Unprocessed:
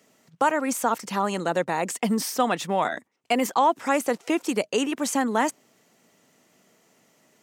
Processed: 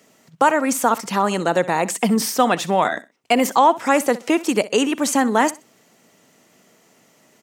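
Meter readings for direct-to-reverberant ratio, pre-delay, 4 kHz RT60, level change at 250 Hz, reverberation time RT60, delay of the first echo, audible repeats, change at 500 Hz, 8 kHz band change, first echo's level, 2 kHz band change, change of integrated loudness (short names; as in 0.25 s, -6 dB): none, none, none, +6.0 dB, none, 63 ms, 2, +6.0 dB, +6.0 dB, -18.0 dB, +6.0 dB, +6.0 dB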